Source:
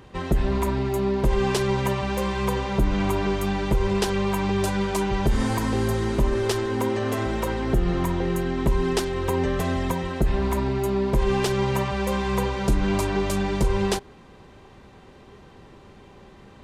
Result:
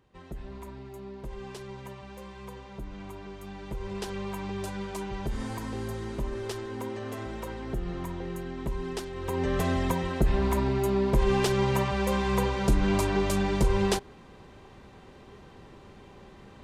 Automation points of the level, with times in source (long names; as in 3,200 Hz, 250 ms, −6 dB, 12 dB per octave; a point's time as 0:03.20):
0:03.33 −18.5 dB
0:04.12 −11 dB
0:09.12 −11 dB
0:09.57 −2 dB